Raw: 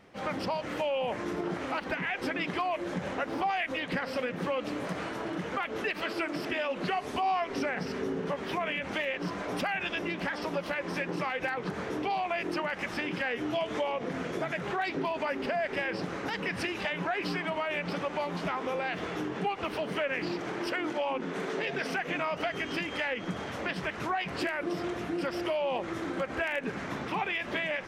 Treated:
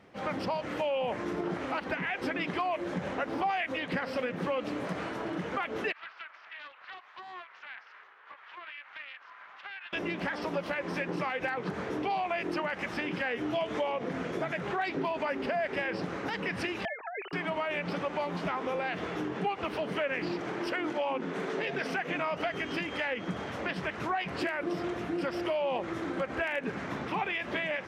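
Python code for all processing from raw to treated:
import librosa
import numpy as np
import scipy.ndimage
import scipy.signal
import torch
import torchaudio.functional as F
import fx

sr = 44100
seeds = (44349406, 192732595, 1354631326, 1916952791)

y = fx.chain(x, sr, fx.highpass(hz=1200.0, slope=24),
    fx.spacing_loss(db_at_10k=42),
    fx.doppler_dist(depth_ms=0.16), at=(5.92, 9.93))
y = fx.chain(y, sr, fx.sine_speech(),
    fx.highpass(hz=690.0, slope=6),
    fx.over_compress(threshold_db=-35.0, ratio=-1.0), at=(16.85, 17.33))
y = scipy.signal.sosfilt(scipy.signal.butter(2, 45.0, 'highpass', fs=sr, output='sos'), y)
y = fx.high_shelf(y, sr, hz=4800.0, db=-6.0)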